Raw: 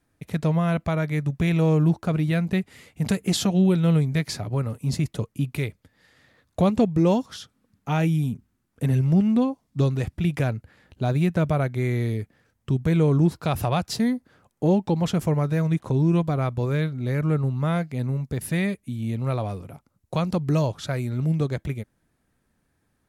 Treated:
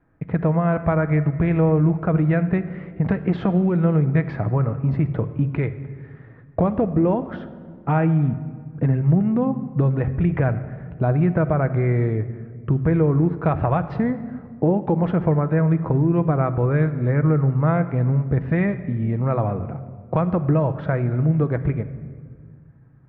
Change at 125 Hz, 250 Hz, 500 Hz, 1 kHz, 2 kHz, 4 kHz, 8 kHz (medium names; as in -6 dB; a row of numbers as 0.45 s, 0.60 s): +3.5 dB, +2.5 dB, +4.0 dB, +4.0 dB, +2.0 dB, under -15 dB, under -40 dB